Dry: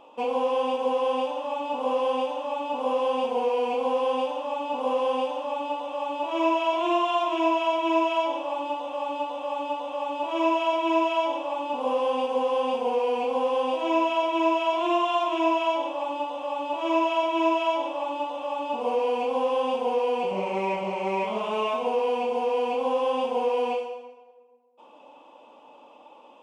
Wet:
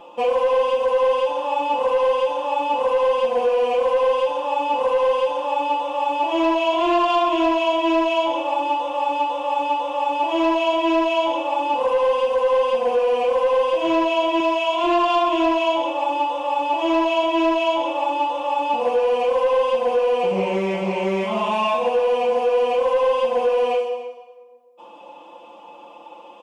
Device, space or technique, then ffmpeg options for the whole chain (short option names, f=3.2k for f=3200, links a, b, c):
soft clipper into limiter: -filter_complex "[0:a]asettb=1/sr,asplit=3[a][b][c];[a]atrim=end=14.404[d];[b]atrim=start=14.4:end=14.84,asetpts=PTS-STARTPTS,afade=t=in:d=0.004:c=qsin,afade=t=out:st=0.436:d=0.004:c=qsin,lowshelf=f=440:g=-9.5[e];[c]atrim=start=14.836[f];[d][e]acrossfade=d=0.004:c1=hsin:c2=qsin[g];[g][f]acrossfade=d=0.004:c1=qsin:c2=hsin,aecho=1:1:5.8:0.88,asoftclip=type=tanh:threshold=-14dB,alimiter=limit=-18dB:level=0:latency=1:release=351,aecho=1:1:291:0.119,volume=5.5dB"